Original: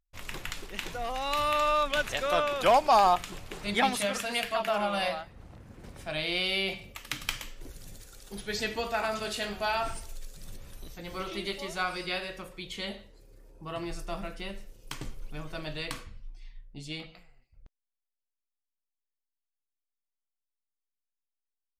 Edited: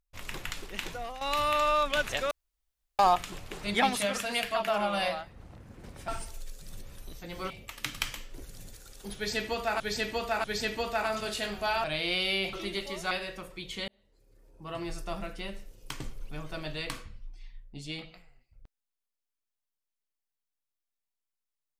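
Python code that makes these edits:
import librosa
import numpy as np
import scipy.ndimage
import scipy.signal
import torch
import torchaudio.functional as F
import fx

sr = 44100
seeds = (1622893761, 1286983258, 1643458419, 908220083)

y = fx.edit(x, sr, fx.fade_out_to(start_s=0.87, length_s=0.34, floor_db=-11.0),
    fx.room_tone_fill(start_s=2.31, length_s=0.68),
    fx.swap(start_s=6.08, length_s=0.69, other_s=9.83, other_length_s=1.42),
    fx.repeat(start_s=8.43, length_s=0.64, count=3),
    fx.cut(start_s=11.83, length_s=0.29),
    fx.fade_in_span(start_s=12.89, length_s=1.0), tone=tone)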